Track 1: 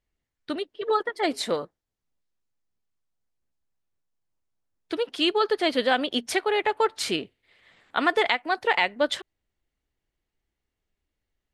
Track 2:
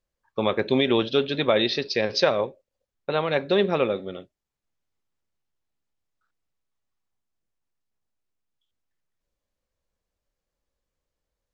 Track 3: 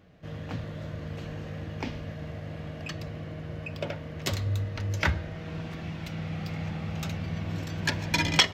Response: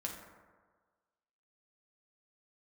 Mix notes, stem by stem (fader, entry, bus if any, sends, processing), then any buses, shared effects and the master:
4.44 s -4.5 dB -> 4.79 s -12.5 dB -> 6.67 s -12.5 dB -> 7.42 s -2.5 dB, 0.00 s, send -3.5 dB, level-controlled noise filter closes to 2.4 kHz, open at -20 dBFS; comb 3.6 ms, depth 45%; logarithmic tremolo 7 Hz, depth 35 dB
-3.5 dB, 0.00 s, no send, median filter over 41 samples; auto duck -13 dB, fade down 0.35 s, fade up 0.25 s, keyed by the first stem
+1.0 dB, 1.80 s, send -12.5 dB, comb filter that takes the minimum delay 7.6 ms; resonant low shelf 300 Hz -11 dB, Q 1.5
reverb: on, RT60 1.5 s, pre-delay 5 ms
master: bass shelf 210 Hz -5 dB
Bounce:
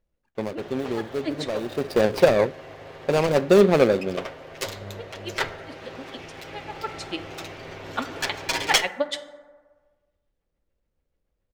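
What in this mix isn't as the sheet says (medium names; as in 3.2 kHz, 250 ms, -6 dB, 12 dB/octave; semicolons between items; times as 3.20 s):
stem 2 -3.5 dB -> +7.5 dB; stem 3: entry 1.80 s -> 0.35 s; master: missing bass shelf 210 Hz -5 dB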